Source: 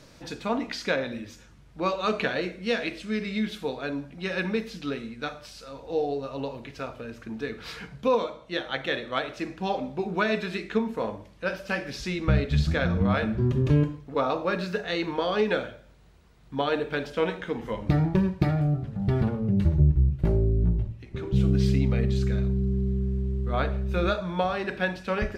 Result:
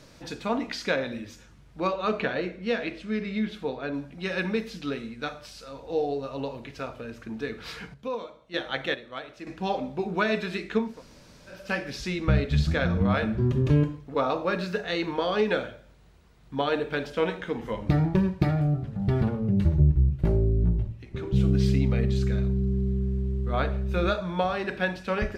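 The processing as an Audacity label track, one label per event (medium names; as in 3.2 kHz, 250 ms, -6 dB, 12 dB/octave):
1.870000	3.940000	low-pass 2.5 kHz 6 dB/octave
7.540000	9.470000	square tremolo 1 Hz, depth 65%, duty 40%
10.910000	11.580000	room tone, crossfade 0.24 s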